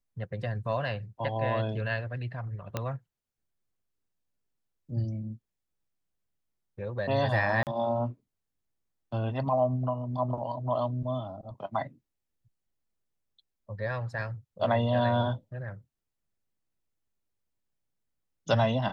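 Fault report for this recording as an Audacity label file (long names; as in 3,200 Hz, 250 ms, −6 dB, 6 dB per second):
2.770000	2.770000	click −16 dBFS
7.630000	7.670000	drop-out 38 ms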